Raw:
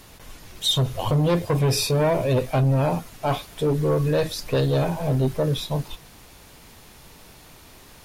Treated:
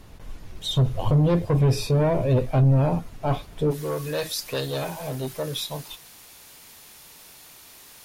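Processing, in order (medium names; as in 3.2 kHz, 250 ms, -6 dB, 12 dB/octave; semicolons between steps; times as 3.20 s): tilt EQ -2 dB/octave, from 3.70 s +2.5 dB/octave; trim -3.5 dB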